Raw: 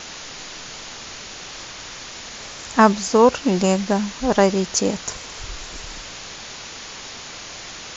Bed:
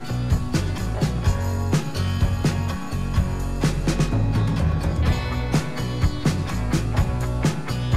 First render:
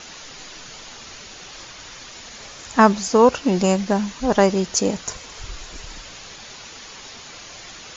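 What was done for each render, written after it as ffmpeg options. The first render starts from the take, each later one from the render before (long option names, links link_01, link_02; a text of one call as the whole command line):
ffmpeg -i in.wav -af "afftdn=noise_reduction=6:noise_floor=-36" out.wav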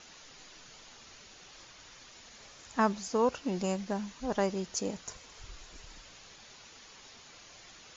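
ffmpeg -i in.wav -af "volume=-14dB" out.wav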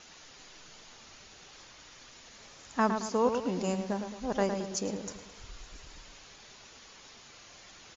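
ffmpeg -i in.wav -filter_complex "[0:a]asplit=2[link_01][link_02];[link_02]adelay=110,lowpass=frequency=2000:poles=1,volume=-6dB,asplit=2[link_03][link_04];[link_04]adelay=110,lowpass=frequency=2000:poles=1,volume=0.46,asplit=2[link_05][link_06];[link_06]adelay=110,lowpass=frequency=2000:poles=1,volume=0.46,asplit=2[link_07][link_08];[link_08]adelay=110,lowpass=frequency=2000:poles=1,volume=0.46,asplit=2[link_09][link_10];[link_10]adelay=110,lowpass=frequency=2000:poles=1,volume=0.46,asplit=2[link_11][link_12];[link_12]adelay=110,lowpass=frequency=2000:poles=1,volume=0.46[link_13];[link_01][link_03][link_05][link_07][link_09][link_11][link_13]amix=inputs=7:normalize=0" out.wav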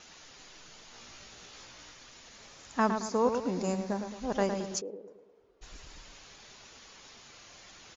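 ffmpeg -i in.wav -filter_complex "[0:a]asettb=1/sr,asplit=3[link_01][link_02][link_03];[link_01]atrim=end=0.924[link_04];[link_02]atrim=start=0.92:end=1.92,asetpts=PTS-STARTPTS,afade=type=in:duration=0.004:curve=qsin,afade=type=out:start_time=0.996:duration=0.004:curve=qsin,asplit=2[link_05][link_06];[link_06]adelay=17,volume=-2dB[link_07];[link_05][link_07]amix=inputs=2:normalize=0,atrim=end_sample=44100[link_08];[link_03]atrim=start=1.916[link_09];[link_04][link_08]acrossfade=duration=0.004:curve1=hsin:curve2=qsin[link_10];[link_10][link_09]acrossfade=duration=0.004:curve1=qsin:curve2=hsin,asettb=1/sr,asplit=3[link_11][link_12][link_13];[link_11]atrim=end=2.964[link_14];[link_12]atrim=start=2.96:end=4.11,asetpts=PTS-STARTPTS,afade=type=in:duration=0.004:curve=qsin,afade=type=out:start_time=1.146:duration=0.004:curve=qsin,equalizer=frequency=3000:width_type=o:width=0.28:gain=-9[link_15];[link_13]atrim=start=4.106[link_16];[link_14][link_15]acrossfade=duration=0.004:curve1=hsin:curve2=qsin[link_17];[link_17][link_16]acrossfade=duration=0.004:curve1=qsin:curve2=hsin,asplit=3[link_18][link_19][link_20];[link_18]afade=type=out:start_time=4.8:duration=0.02[link_21];[link_19]bandpass=frequency=430:width_type=q:width=4.1,afade=type=in:start_time=4.8:duration=0.02,afade=type=out:start_time=5.61:duration=0.02[link_22];[link_20]afade=type=in:start_time=5.61:duration=0.02[link_23];[link_21][link_22][link_23]amix=inputs=3:normalize=0" out.wav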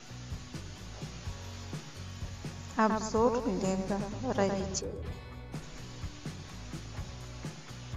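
ffmpeg -i in.wav -i bed.wav -filter_complex "[1:a]volume=-20.5dB[link_01];[0:a][link_01]amix=inputs=2:normalize=0" out.wav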